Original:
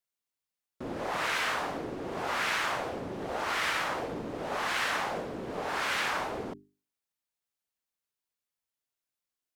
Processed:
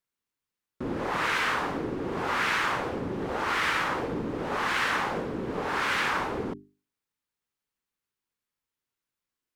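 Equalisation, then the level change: bell 660 Hz -8.5 dB 0.57 oct; high shelf 2600 Hz -9 dB; +7.0 dB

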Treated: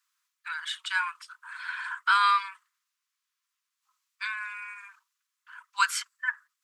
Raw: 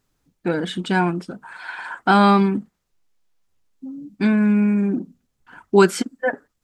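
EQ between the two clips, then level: steep high-pass 1000 Hz 96 dB/oct; -2.0 dB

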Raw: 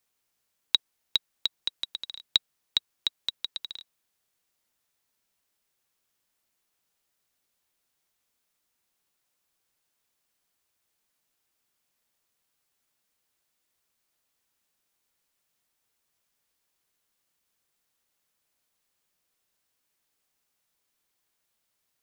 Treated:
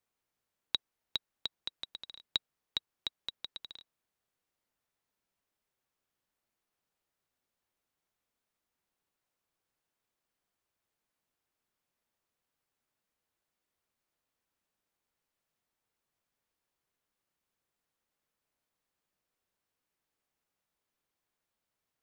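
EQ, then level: high shelf 2500 Hz -10 dB; -2.5 dB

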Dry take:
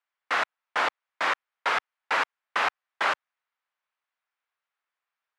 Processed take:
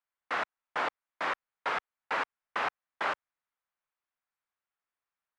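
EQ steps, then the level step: tilt -2 dB/oct; -5.5 dB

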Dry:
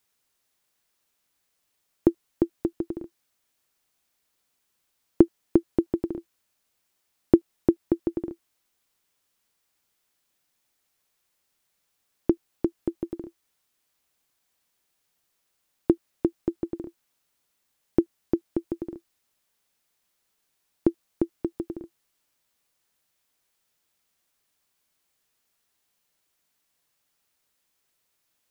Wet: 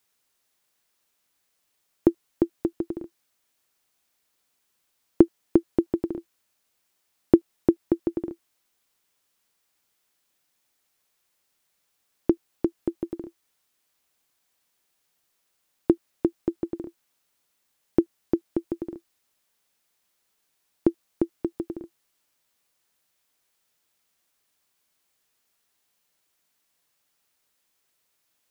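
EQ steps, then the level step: low shelf 150 Hz -4 dB; +1.5 dB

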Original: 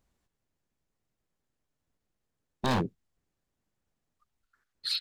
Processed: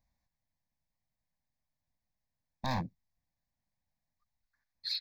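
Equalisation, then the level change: fixed phaser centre 2000 Hz, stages 8; -3.5 dB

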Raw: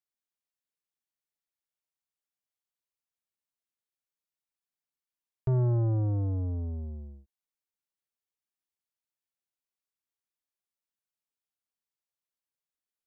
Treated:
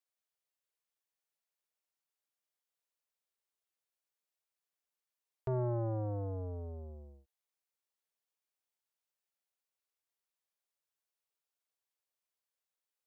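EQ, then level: resonant low shelf 340 Hz -9.5 dB, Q 1.5; 0.0 dB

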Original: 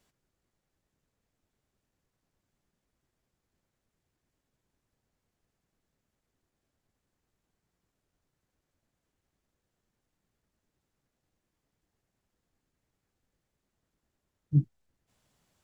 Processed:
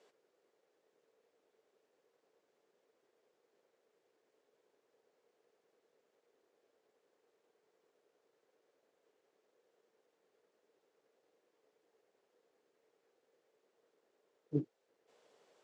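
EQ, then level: resonant high-pass 450 Hz, resonance Q 4.9; air absorption 76 m; +3.5 dB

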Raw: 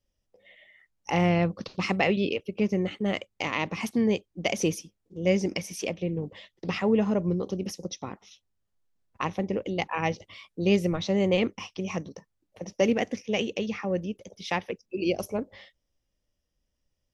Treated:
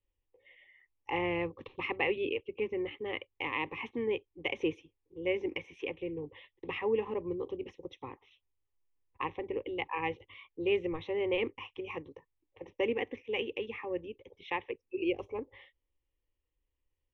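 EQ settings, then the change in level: LPF 3600 Hz 24 dB/oct; fixed phaser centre 970 Hz, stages 8; -3.5 dB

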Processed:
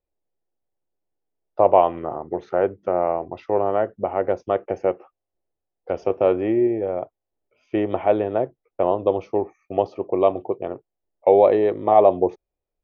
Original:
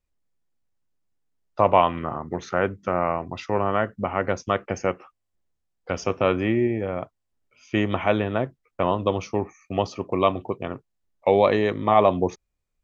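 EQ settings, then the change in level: air absorption 200 m; band shelf 520 Hz +11.5 dB; -6.5 dB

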